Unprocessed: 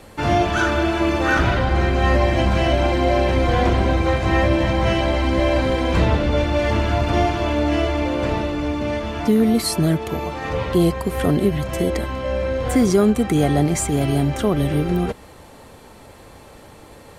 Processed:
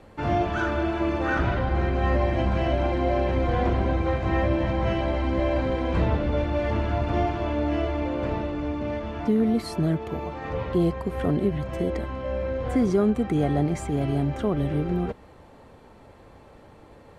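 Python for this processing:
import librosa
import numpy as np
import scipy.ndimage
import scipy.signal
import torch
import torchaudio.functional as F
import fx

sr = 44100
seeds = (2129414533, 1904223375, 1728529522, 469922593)

y = fx.lowpass(x, sr, hz=1700.0, slope=6)
y = F.gain(torch.from_numpy(y), -5.5).numpy()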